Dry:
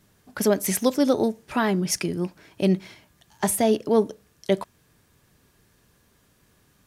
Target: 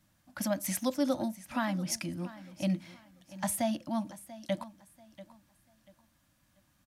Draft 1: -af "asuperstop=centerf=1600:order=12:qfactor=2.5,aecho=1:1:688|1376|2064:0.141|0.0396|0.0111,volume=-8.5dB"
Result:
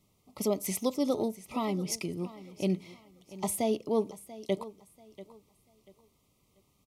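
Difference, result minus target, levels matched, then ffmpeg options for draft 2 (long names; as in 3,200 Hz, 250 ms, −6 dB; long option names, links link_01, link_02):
2,000 Hz band −6.5 dB
-af "asuperstop=centerf=420:order=12:qfactor=2.5,aecho=1:1:688|1376|2064:0.141|0.0396|0.0111,volume=-8.5dB"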